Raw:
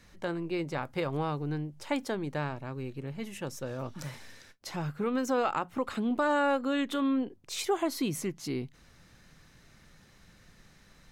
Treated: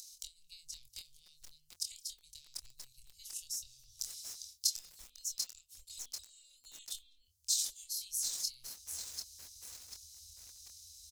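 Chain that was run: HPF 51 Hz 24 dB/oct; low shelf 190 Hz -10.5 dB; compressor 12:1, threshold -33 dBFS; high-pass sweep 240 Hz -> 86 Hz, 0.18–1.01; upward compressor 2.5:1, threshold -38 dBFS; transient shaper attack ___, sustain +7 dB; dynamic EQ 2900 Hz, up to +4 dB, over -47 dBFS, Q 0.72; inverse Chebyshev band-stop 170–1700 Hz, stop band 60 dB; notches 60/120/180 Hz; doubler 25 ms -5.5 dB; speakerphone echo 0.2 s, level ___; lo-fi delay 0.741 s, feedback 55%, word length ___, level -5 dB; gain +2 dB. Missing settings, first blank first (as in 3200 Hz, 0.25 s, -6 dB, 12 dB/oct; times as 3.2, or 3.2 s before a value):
+11 dB, -25 dB, 8-bit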